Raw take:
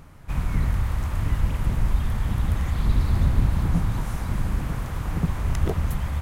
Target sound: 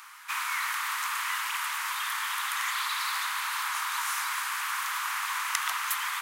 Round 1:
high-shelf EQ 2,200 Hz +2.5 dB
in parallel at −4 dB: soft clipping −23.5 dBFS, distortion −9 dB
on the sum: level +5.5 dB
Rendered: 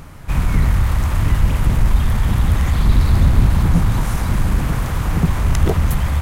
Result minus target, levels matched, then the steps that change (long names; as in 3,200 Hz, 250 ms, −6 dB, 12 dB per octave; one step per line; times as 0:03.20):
1,000 Hz band −10.0 dB
add first: Butterworth high-pass 1,000 Hz 48 dB per octave